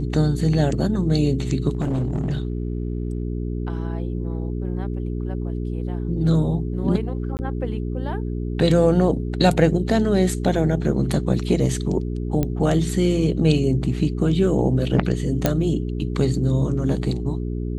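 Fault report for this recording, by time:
hum 60 Hz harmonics 7 -26 dBFS
1.72–3.23 clipped -19 dBFS
7.37–7.39 gap 19 ms
12.43 pop -10 dBFS
15.46 pop -3 dBFS

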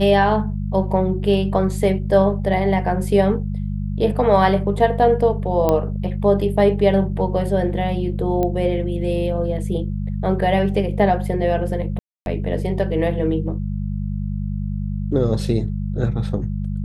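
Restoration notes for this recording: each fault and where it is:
hum 50 Hz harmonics 4 -24 dBFS
5.69 pop -6 dBFS
8.43 pop -11 dBFS
11.99–12.26 gap 0.271 s

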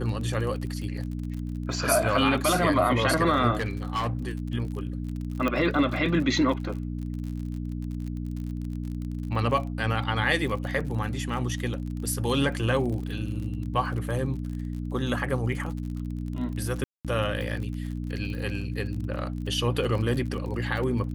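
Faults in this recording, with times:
crackle 42/s -34 dBFS
hum 60 Hz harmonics 5 -32 dBFS
3.6–4.32 clipped -23.5 dBFS
5.48 pop -14 dBFS
16.84–17.05 gap 0.207 s

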